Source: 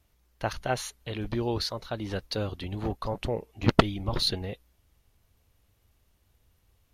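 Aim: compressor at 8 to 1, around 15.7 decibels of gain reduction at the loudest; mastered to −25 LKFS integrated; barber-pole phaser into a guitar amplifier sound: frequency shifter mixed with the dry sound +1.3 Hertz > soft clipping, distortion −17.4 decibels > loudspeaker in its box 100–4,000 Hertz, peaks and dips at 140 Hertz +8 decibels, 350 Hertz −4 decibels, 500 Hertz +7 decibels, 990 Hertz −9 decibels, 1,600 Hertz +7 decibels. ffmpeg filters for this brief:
ffmpeg -i in.wav -filter_complex "[0:a]acompressor=threshold=-30dB:ratio=8,asplit=2[link_01][link_02];[link_02]afreqshift=1.3[link_03];[link_01][link_03]amix=inputs=2:normalize=1,asoftclip=threshold=-29dB,highpass=100,equalizer=frequency=140:width_type=q:width=4:gain=8,equalizer=frequency=350:width_type=q:width=4:gain=-4,equalizer=frequency=500:width_type=q:width=4:gain=7,equalizer=frequency=990:width_type=q:width=4:gain=-9,equalizer=frequency=1600:width_type=q:width=4:gain=7,lowpass=frequency=4000:width=0.5412,lowpass=frequency=4000:width=1.3066,volume=15.5dB" out.wav

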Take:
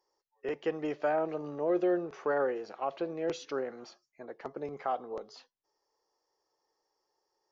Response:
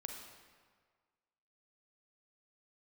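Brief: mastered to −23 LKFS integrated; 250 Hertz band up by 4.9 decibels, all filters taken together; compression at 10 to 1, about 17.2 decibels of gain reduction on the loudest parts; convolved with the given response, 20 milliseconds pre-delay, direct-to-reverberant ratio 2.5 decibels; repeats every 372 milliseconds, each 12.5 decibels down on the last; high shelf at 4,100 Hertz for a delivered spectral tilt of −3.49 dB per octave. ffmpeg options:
-filter_complex "[0:a]equalizer=frequency=250:width_type=o:gain=8,highshelf=frequency=4100:gain=-4,acompressor=threshold=-39dB:ratio=10,aecho=1:1:372|744|1116:0.237|0.0569|0.0137,asplit=2[link_01][link_02];[1:a]atrim=start_sample=2205,adelay=20[link_03];[link_02][link_03]afir=irnorm=-1:irlink=0,volume=0dB[link_04];[link_01][link_04]amix=inputs=2:normalize=0,volume=19dB"

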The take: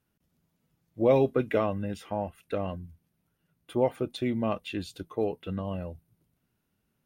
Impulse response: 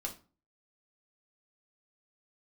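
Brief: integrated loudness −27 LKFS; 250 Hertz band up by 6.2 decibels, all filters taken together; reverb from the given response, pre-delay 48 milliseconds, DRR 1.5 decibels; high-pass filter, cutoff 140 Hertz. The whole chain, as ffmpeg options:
-filter_complex "[0:a]highpass=140,equalizer=frequency=250:width_type=o:gain=8,asplit=2[link_01][link_02];[1:a]atrim=start_sample=2205,adelay=48[link_03];[link_02][link_03]afir=irnorm=-1:irlink=0,volume=-1.5dB[link_04];[link_01][link_04]amix=inputs=2:normalize=0,volume=-3dB"

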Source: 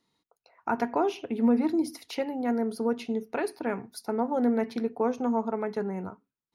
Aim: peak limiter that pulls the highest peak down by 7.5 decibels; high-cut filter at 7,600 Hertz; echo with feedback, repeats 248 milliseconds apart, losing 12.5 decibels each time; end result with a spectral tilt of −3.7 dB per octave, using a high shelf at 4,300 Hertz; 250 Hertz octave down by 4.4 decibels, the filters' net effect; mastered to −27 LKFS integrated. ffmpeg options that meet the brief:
ffmpeg -i in.wav -af "lowpass=7600,equalizer=frequency=250:width_type=o:gain=-5,highshelf=frequency=4300:gain=8.5,alimiter=limit=-22.5dB:level=0:latency=1,aecho=1:1:248|496|744:0.237|0.0569|0.0137,volume=6.5dB" out.wav

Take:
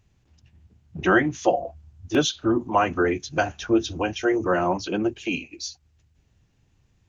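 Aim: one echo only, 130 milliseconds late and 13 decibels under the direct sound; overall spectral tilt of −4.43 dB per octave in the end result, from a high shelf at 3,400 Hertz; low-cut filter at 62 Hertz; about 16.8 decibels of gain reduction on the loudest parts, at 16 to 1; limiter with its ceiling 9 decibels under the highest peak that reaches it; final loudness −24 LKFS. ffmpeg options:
ffmpeg -i in.wav -af "highpass=62,highshelf=frequency=3400:gain=-3,acompressor=threshold=-31dB:ratio=16,alimiter=level_in=4dB:limit=-24dB:level=0:latency=1,volume=-4dB,aecho=1:1:130:0.224,volume=14.5dB" out.wav

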